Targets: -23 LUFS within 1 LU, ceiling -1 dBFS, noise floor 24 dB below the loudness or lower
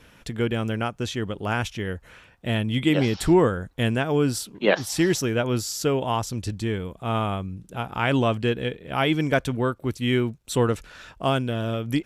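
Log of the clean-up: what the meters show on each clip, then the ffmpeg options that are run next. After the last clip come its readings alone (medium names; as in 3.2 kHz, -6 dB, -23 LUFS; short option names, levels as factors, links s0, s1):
loudness -25.0 LUFS; peak level -4.5 dBFS; loudness target -23.0 LUFS
-> -af "volume=1.26"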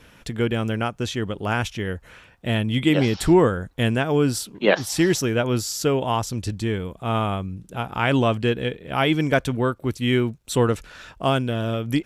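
loudness -23.0 LUFS; peak level -2.5 dBFS; noise floor -52 dBFS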